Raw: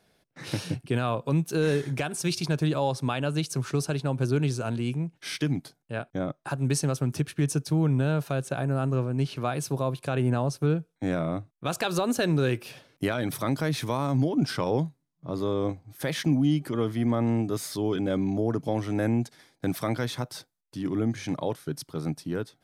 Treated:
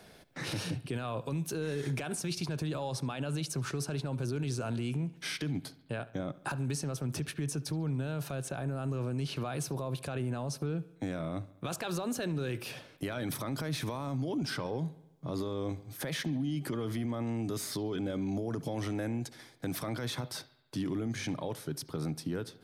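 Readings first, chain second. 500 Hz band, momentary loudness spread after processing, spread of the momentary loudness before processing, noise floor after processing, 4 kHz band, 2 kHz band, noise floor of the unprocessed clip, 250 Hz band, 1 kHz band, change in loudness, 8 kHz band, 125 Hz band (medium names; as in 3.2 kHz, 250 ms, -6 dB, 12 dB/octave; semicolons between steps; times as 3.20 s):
-8.5 dB, 5 LU, 9 LU, -58 dBFS, -4.5 dB, -6.0 dB, -74 dBFS, -8.0 dB, -8.5 dB, -7.5 dB, -4.0 dB, -7.5 dB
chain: peak limiter -26.5 dBFS, peak gain reduction 11.5 dB; on a send: bucket-brigade echo 70 ms, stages 2048, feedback 54%, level -19.5 dB; on the sum: three bands compressed up and down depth 40%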